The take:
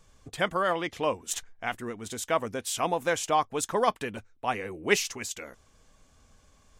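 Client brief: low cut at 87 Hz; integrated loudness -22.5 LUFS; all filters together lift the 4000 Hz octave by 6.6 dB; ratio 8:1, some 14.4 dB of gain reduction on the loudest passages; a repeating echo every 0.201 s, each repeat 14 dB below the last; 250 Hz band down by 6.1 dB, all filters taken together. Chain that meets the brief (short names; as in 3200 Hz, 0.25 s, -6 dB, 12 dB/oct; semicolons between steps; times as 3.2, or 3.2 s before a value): HPF 87 Hz; bell 250 Hz -9 dB; bell 4000 Hz +9 dB; compressor 8:1, threshold -33 dBFS; feedback echo 0.201 s, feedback 20%, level -14 dB; gain +15 dB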